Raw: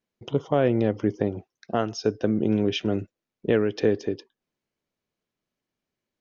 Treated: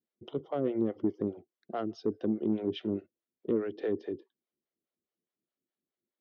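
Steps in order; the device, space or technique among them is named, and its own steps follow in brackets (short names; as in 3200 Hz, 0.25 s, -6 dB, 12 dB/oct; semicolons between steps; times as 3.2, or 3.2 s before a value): guitar amplifier with harmonic tremolo (harmonic tremolo 4.8 Hz, depth 100%, crossover 490 Hz; soft clip -18 dBFS, distortion -17 dB; speaker cabinet 98–3800 Hz, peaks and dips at 120 Hz -7 dB, 240 Hz +3 dB, 350 Hz +7 dB, 960 Hz -6 dB, 1600 Hz -5 dB, 2500 Hz -9 dB); gain -4 dB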